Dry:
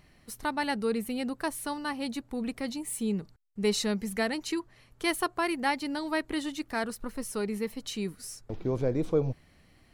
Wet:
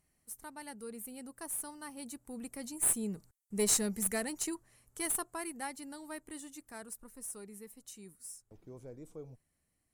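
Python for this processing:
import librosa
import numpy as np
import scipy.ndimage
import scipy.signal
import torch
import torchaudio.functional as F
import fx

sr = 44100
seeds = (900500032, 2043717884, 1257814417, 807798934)

y = fx.doppler_pass(x, sr, speed_mps=6, closest_m=5.1, pass_at_s=3.76)
y = fx.high_shelf_res(y, sr, hz=5800.0, db=13.5, q=1.5)
y = fx.cheby_harmonics(y, sr, harmonics=(2, 6, 8), levels_db=(-15, -28, -40), full_scale_db=-11.0)
y = F.gain(torch.from_numpy(y), -5.0).numpy()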